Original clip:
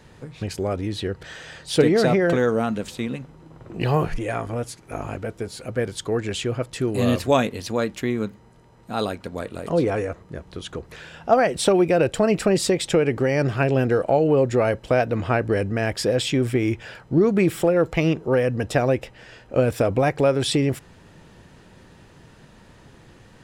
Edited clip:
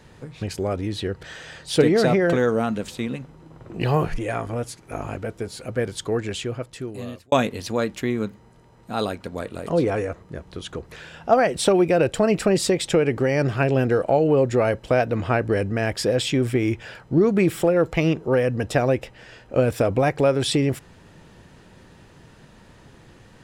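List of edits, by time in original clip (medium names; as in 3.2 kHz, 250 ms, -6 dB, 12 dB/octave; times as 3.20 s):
6.12–7.32 s: fade out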